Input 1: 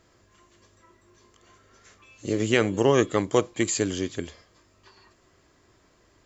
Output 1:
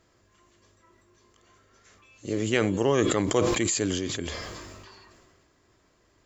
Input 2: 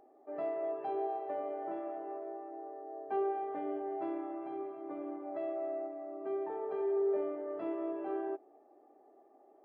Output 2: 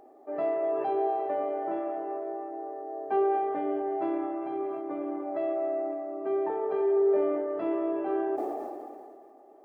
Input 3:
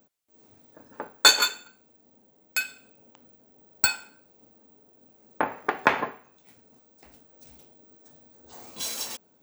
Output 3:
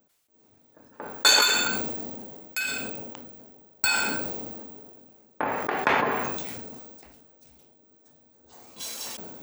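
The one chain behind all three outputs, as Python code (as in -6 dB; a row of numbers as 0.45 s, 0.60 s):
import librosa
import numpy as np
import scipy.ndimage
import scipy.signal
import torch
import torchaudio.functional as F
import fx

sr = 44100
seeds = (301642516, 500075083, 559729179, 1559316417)

y = fx.sustainer(x, sr, db_per_s=26.0)
y = y * 10.0 ** (-30 / 20.0) / np.sqrt(np.mean(np.square(y)))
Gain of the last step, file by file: -4.0 dB, +7.5 dB, -4.5 dB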